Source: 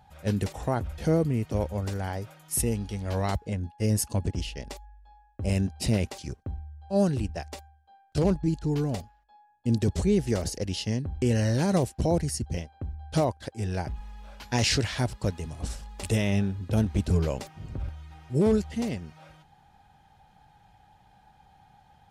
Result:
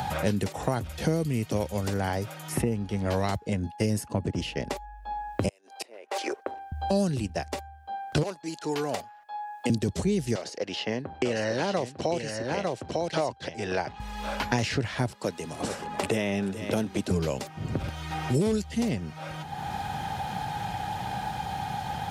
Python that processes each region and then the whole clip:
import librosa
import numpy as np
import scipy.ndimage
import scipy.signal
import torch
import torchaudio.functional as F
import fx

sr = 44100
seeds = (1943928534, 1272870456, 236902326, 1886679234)

y = fx.chain(x, sr, fx.cheby2_highpass(hz=160.0, order=4, stop_db=50),
    fx.gate_flip(shuts_db=-25.0, range_db=-32), at=(5.48, 6.72))
y = fx.chain(y, sr, fx.highpass(hz=640.0, slope=12),
    fx.clip_hard(threshold_db=-22.0), at=(8.23, 9.7))
y = fx.chain(y, sr, fx.bandpass_edges(low_hz=470.0, high_hz=4800.0),
    fx.echo_single(ms=901, db=-6.5), at=(10.35, 14.0))
y = fx.chain(y, sr, fx.highpass(hz=270.0, slope=12),
    fx.echo_single(ms=429, db=-17.0), at=(15.11, 17.11))
y = scipy.signal.sosfilt(scipy.signal.butter(2, 100.0, 'highpass', fs=sr, output='sos'), y)
y = fx.band_squash(y, sr, depth_pct=100)
y = y * 10.0 ** (2.0 / 20.0)